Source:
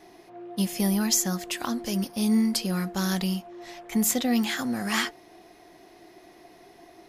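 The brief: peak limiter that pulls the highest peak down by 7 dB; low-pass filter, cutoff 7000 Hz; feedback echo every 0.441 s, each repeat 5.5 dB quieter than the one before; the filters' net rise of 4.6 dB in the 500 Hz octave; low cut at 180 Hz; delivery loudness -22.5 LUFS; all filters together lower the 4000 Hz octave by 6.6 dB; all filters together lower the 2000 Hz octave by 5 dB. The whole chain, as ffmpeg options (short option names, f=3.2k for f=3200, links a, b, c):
-af "highpass=180,lowpass=7k,equalizer=f=500:t=o:g=6.5,equalizer=f=2k:t=o:g=-5,equalizer=f=4k:t=o:g=-7,alimiter=limit=-19.5dB:level=0:latency=1,aecho=1:1:441|882|1323|1764|2205|2646|3087:0.531|0.281|0.149|0.079|0.0419|0.0222|0.0118,volume=6.5dB"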